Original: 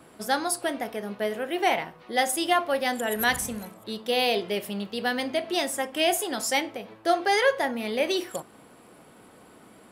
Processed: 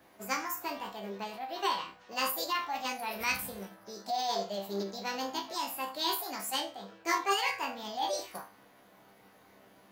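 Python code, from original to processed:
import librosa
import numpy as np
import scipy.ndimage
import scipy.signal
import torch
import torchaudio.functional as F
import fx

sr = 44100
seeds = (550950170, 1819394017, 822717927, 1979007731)

y = fx.resonator_bank(x, sr, root=36, chord='fifth', decay_s=0.33)
y = fx.formant_shift(y, sr, semitones=6)
y = y * librosa.db_to_amplitude(2.5)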